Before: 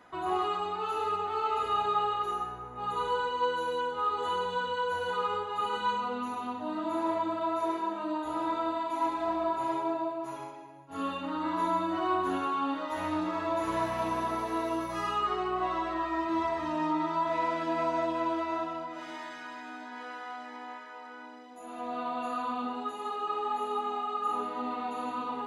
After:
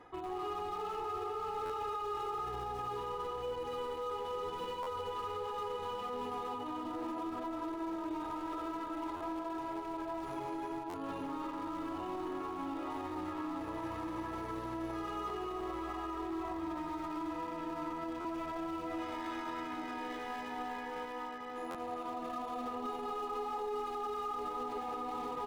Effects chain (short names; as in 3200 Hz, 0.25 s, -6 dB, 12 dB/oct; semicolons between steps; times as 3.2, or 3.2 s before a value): reverse; compressor 10:1, threshold -38 dBFS, peak gain reduction 15 dB; reverse; comb 2.4 ms, depth 58%; in parallel at -10.5 dB: requantised 6-bit, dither none; on the sum: tilt -2.5 dB/oct; notch 1500 Hz, Q 24; tapped delay 0.239/0.327/0.863 s -7.5/-6/-4.5 dB; limiter -30.5 dBFS, peak gain reduction 10 dB; low shelf 110 Hz -7 dB; stuck buffer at 1.65/4.82/9.16/10.89/18.2/21.7, samples 512, times 3